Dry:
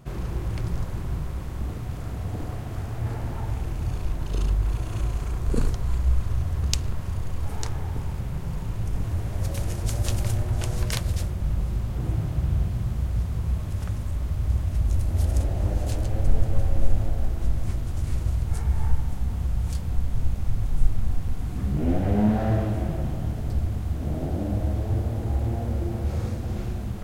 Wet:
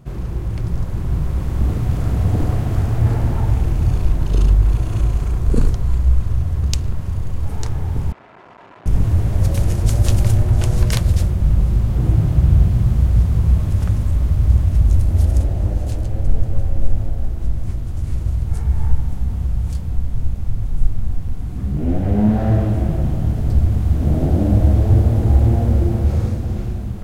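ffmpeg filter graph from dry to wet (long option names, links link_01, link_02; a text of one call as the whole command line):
ffmpeg -i in.wav -filter_complex "[0:a]asettb=1/sr,asplit=3[link_01][link_02][link_03];[link_01]atrim=end=8.124[link_04];[link_02]atrim=start=8.12:end=8.86,asetpts=PTS-STARTPTS,afade=type=in:duration=0.004:curve=qsin,afade=type=out:start_time=0.736:duration=0.004:curve=qsin,aecho=1:1:3:0.38,atrim=end_sample=32634,asoftclip=type=hard:threshold=-26.5dB,highpass=730,lowpass=2200[link_05];[link_03]atrim=start=8.856[link_06];[link_04][link_05]acrossfade=duration=0.004:curve1=hsin:curve2=qsin[link_07];[link_07][link_06]acrossfade=duration=0.004:curve1=qsin:curve2=hsin,lowshelf=frequency=430:gain=6.5,dynaudnorm=framelen=280:gausssize=9:maxgain=11.5dB,volume=-1dB" out.wav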